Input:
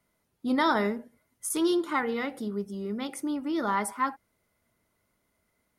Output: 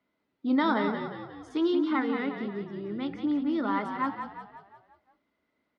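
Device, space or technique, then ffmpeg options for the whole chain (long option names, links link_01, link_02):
frequency-shifting delay pedal into a guitar cabinet: -filter_complex "[0:a]asplit=7[link_01][link_02][link_03][link_04][link_05][link_06][link_07];[link_02]adelay=178,afreqshift=-39,volume=-7dB[link_08];[link_03]adelay=356,afreqshift=-78,volume=-12.8dB[link_09];[link_04]adelay=534,afreqshift=-117,volume=-18.7dB[link_10];[link_05]adelay=712,afreqshift=-156,volume=-24.5dB[link_11];[link_06]adelay=890,afreqshift=-195,volume=-30.4dB[link_12];[link_07]adelay=1068,afreqshift=-234,volume=-36.2dB[link_13];[link_01][link_08][link_09][link_10][link_11][link_12][link_13]amix=inputs=7:normalize=0,highpass=95,equalizer=frequency=100:width_type=q:width=4:gain=-9,equalizer=frequency=150:width_type=q:width=4:gain=-7,equalizer=frequency=280:width_type=q:width=4:gain=8,lowpass=frequency=4200:width=0.5412,lowpass=frequency=4200:width=1.3066,asettb=1/sr,asplit=3[link_14][link_15][link_16];[link_14]atrim=end=1.594[link_17];[link_15]atrim=start=1.59:end=3.45,asetpts=PTS-STARTPTS,afade=type=in:duration=0.004:curve=qsin,afade=type=out:start_time=1.856:duration=0.004:curve=qsin,lowpass=5800[link_18];[link_16]atrim=start=3.446[link_19];[link_17][link_18]acrossfade=duration=0.004:curve1=hsin:curve2=qsin[link_20];[link_20][link_19]acrossfade=duration=0.004:curve1=qsin:curve2=hsin,volume=-3dB"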